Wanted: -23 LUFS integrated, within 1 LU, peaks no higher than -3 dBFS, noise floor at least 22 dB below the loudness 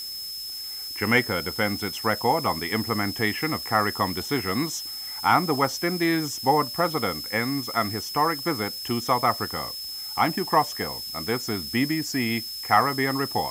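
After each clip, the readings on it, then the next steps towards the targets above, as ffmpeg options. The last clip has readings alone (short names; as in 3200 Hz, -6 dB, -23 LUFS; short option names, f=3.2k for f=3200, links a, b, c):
steady tone 5200 Hz; tone level -33 dBFS; noise floor -35 dBFS; noise floor target -47 dBFS; loudness -25.0 LUFS; peak -6.0 dBFS; loudness target -23.0 LUFS
-> -af "bandreject=f=5.2k:w=30"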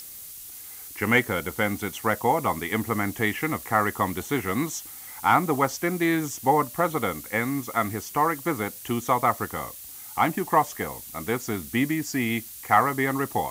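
steady tone none; noise floor -42 dBFS; noise floor target -48 dBFS
-> -af "afftdn=nr=6:nf=-42"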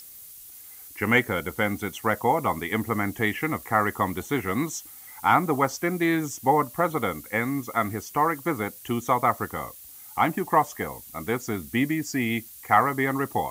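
noise floor -45 dBFS; noise floor target -48 dBFS
-> -af "afftdn=nr=6:nf=-45"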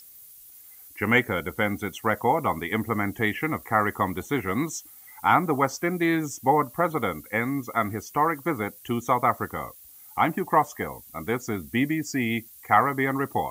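noise floor -49 dBFS; loudness -25.5 LUFS; peak -6.0 dBFS; loudness target -23.0 LUFS
-> -af "volume=2.5dB"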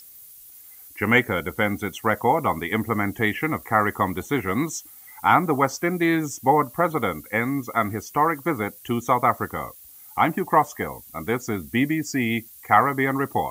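loudness -23.0 LUFS; peak -3.5 dBFS; noise floor -46 dBFS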